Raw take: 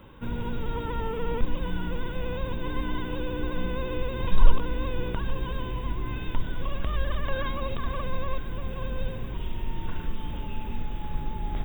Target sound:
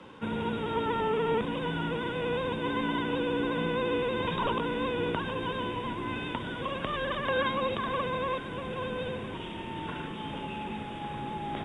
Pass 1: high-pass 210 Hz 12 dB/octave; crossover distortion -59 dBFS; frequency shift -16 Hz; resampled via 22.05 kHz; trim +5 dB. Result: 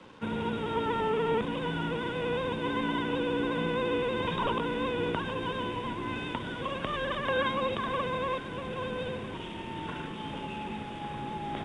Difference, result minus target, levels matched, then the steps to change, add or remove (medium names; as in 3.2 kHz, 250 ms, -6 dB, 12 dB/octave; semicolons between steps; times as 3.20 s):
crossover distortion: distortion +9 dB
change: crossover distortion -68 dBFS